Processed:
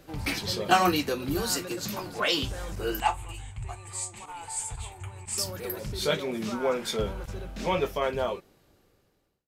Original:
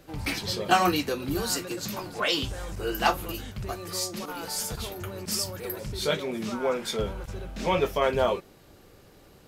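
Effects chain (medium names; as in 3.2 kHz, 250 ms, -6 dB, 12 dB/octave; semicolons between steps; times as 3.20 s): fade out at the end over 2.21 s; 3.00–5.38 s: FFT filter 120 Hz 0 dB, 180 Hz -19 dB, 400 Hz -14 dB, 580 Hz -16 dB, 840 Hz +2 dB, 1.4 kHz -11 dB, 2.3 kHz -1 dB, 5.5 kHz -17 dB, 8 kHz +7 dB, 13 kHz -26 dB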